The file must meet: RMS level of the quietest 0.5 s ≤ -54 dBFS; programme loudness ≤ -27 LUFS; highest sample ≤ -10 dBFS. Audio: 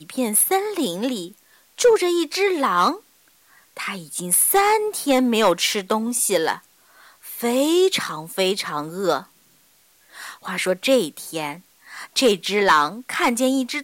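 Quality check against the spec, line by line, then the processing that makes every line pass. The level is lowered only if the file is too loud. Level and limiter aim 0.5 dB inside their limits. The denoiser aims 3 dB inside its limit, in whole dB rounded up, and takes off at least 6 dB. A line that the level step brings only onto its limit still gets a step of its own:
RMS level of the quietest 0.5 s -57 dBFS: OK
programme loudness -20.0 LUFS: fail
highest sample -5.0 dBFS: fail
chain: gain -7.5 dB

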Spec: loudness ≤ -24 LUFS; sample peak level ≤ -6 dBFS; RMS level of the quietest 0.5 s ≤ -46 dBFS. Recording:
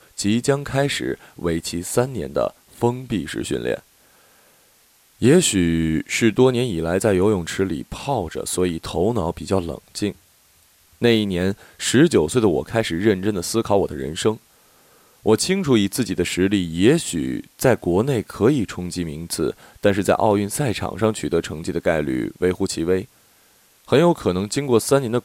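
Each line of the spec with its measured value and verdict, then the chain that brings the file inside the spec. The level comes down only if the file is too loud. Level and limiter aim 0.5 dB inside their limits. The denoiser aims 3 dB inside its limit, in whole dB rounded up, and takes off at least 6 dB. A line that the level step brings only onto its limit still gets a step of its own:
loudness -21.0 LUFS: fail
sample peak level -4.5 dBFS: fail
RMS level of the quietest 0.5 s -56 dBFS: OK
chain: gain -3.5 dB

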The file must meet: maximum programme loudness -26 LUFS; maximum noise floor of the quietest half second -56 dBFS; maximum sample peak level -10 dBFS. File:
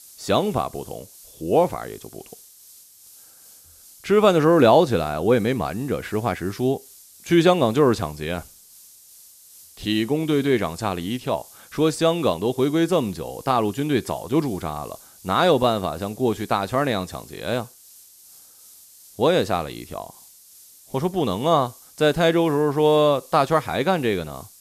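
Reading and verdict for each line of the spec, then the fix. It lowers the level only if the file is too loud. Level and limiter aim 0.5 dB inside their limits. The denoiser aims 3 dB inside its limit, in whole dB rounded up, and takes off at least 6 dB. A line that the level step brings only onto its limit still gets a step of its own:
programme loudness -21.5 LUFS: fail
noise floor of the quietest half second -49 dBFS: fail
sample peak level -4.0 dBFS: fail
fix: denoiser 6 dB, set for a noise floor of -49 dBFS; gain -5 dB; limiter -10.5 dBFS

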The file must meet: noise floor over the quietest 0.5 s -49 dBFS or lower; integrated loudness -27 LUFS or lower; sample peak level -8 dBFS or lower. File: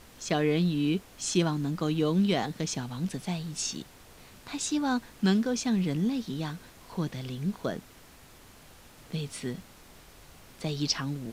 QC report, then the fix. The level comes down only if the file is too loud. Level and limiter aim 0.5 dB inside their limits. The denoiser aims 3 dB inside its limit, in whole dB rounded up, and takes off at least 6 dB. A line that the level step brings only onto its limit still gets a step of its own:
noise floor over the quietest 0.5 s -53 dBFS: OK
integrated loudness -30.0 LUFS: OK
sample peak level -13.0 dBFS: OK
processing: none

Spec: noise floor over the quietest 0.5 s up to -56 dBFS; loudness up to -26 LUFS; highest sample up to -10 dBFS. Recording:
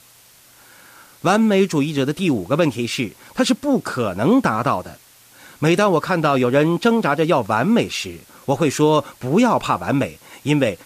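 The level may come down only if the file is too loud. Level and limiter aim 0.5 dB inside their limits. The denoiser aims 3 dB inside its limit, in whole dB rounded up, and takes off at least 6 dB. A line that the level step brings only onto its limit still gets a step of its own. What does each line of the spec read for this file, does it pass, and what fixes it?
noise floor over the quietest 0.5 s -50 dBFS: fail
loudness -19.0 LUFS: fail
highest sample -5.5 dBFS: fail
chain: gain -7.5 dB

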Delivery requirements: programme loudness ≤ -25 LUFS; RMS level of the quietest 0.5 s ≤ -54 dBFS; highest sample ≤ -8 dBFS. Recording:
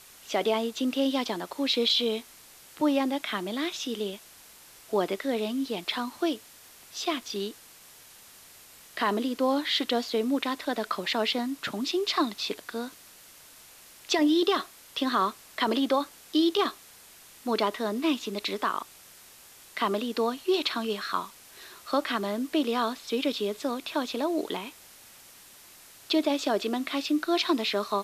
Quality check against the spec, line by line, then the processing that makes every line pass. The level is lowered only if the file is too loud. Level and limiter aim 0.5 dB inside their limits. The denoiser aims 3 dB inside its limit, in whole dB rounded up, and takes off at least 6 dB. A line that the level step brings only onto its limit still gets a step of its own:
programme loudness -28.5 LUFS: OK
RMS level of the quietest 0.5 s -52 dBFS: fail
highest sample -13.0 dBFS: OK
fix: denoiser 6 dB, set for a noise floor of -52 dBFS

